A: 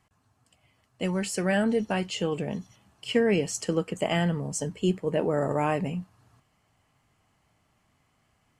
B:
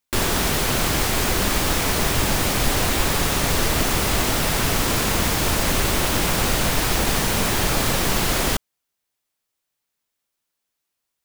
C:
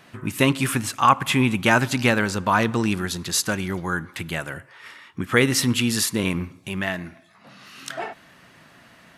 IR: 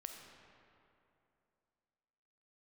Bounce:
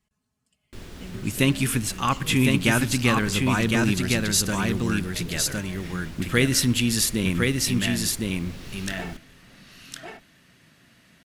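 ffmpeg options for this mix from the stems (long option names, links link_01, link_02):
-filter_complex "[0:a]aecho=1:1:4.7:0.72,acompressor=threshold=-30dB:ratio=6,volume=-6.5dB[link_01];[1:a]lowpass=frequency=2000:poles=1,adelay=600,volume=-17.5dB,asplit=3[link_02][link_03][link_04];[link_03]volume=-7dB[link_05];[link_04]volume=-19.5dB[link_06];[2:a]adelay=1000,volume=1dB,asplit=2[link_07][link_08];[link_08]volume=-3dB[link_09];[3:a]atrim=start_sample=2205[link_10];[link_05][link_10]afir=irnorm=-1:irlink=0[link_11];[link_06][link_09]amix=inputs=2:normalize=0,aecho=0:1:1059:1[link_12];[link_01][link_02][link_07][link_11][link_12]amix=inputs=5:normalize=0,equalizer=frequency=900:width=0.67:gain=-11"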